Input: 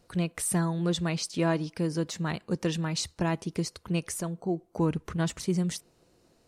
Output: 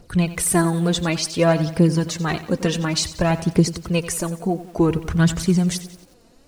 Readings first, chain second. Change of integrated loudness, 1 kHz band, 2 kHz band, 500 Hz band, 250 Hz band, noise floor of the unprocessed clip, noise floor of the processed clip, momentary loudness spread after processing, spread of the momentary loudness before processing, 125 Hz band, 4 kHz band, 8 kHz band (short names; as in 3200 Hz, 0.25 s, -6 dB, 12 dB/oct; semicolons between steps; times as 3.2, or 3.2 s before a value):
+9.5 dB, +9.5 dB, +10.0 dB, +10.0 dB, +9.5 dB, -66 dBFS, -53 dBFS, 6 LU, 5 LU, +9.5 dB, +9.5 dB, +9.5 dB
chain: low shelf 74 Hz +7.5 dB; phaser 0.56 Hz, delay 4.5 ms, feedback 53%; lo-fi delay 90 ms, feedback 55%, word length 8-bit, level -14 dB; gain +8 dB